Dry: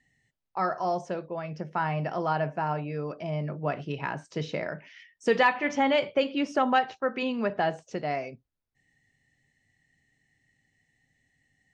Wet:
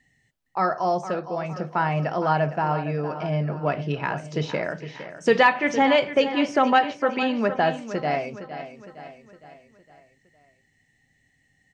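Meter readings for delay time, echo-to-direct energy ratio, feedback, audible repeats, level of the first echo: 461 ms, -11.0 dB, 50%, 4, -12.0 dB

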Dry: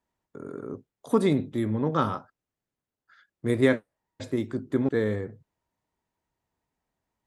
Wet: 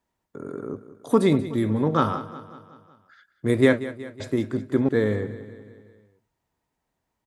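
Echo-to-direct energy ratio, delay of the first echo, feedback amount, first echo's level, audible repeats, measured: -13.5 dB, 185 ms, 56%, -15.0 dB, 4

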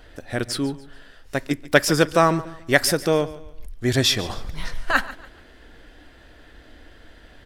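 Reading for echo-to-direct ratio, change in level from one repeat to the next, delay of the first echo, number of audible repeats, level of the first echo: -17.0 dB, -9.5 dB, 143 ms, 2, -17.5 dB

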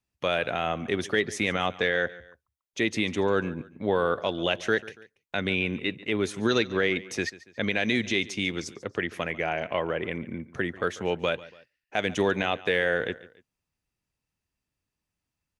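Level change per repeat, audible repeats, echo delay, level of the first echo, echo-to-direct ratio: -7.5 dB, 2, 142 ms, -19.0 dB, -18.5 dB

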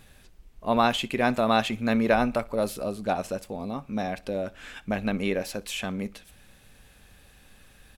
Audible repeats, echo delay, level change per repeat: 2, 61 ms, -8.5 dB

